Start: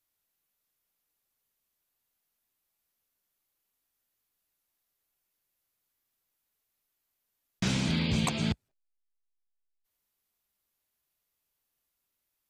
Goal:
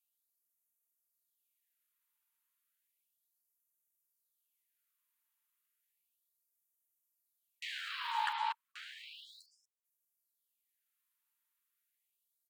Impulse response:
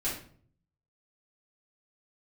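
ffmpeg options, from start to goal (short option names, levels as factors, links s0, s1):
-filter_complex "[0:a]equalizer=f=5000:w=3.2:g=-15,acrossover=split=3600[s0][s1];[s1]acompressor=threshold=0.00112:ratio=6[s2];[s0][s2]amix=inputs=2:normalize=0,aeval=exprs='val(0)*sin(2*PI*700*n/s)':c=same,asettb=1/sr,asplit=3[s3][s4][s5];[s3]atrim=end=7.634[s6];[s4]atrim=start=7.63:end=8.33,asetpts=PTS-STARTPTS,afade=t=in:d=0.004:c=qsin,afade=t=out:st=0.696:d=0.004:c=qsin,aeval=exprs='val(0)*gte(abs(val(0)),0.002)':c=same[s7];[s5]atrim=start=8.326[s8];[s6][s7]acrossfade=d=0.004:c1=hsin:c2=qsin[s9];[s9][s8]acrossfade=d=0.004:c1=qsin:c2=hsin,aecho=1:1:1132:0.422,afftfilt=real='re*gte(b*sr/1024,810*pow(5700/810,0.5+0.5*sin(2*PI*0.33*pts/sr)))':imag='im*gte(b*sr/1024,810*pow(5700/810,0.5+0.5*sin(2*PI*0.33*pts/sr)))':win_size=1024:overlap=0.75,volume=1.12"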